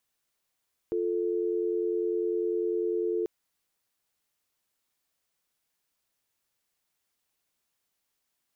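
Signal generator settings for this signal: call progress tone dial tone, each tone -28.5 dBFS 2.34 s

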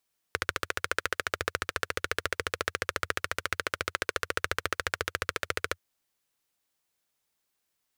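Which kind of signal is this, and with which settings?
single-cylinder engine model, steady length 5.43 s, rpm 1700, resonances 88/480/1400 Hz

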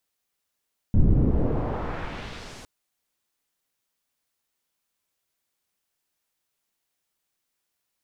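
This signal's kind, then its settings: swept filtered noise pink, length 1.71 s lowpass, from 130 Hz, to 8600 Hz, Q 0.99, exponential, gain ramp -32 dB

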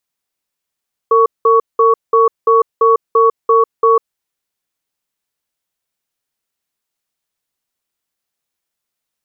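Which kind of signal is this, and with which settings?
cadence 455 Hz, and 1120 Hz, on 0.15 s, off 0.19 s, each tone -9.5 dBFS 2.96 s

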